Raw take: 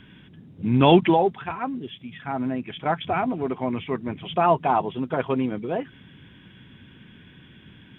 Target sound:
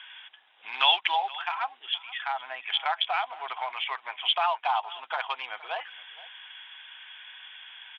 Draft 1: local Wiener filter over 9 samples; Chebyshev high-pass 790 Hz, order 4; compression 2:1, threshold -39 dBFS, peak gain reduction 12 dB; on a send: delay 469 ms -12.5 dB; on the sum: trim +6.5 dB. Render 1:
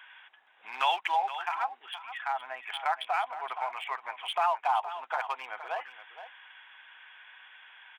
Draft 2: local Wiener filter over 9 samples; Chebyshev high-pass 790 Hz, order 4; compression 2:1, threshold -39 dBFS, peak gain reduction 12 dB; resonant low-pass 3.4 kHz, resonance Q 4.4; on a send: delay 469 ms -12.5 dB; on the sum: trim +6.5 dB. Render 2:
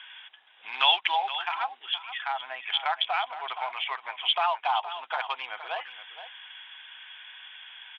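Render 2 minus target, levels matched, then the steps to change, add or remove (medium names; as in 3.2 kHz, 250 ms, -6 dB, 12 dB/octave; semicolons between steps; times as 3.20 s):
echo-to-direct +7 dB
change: delay 469 ms -19.5 dB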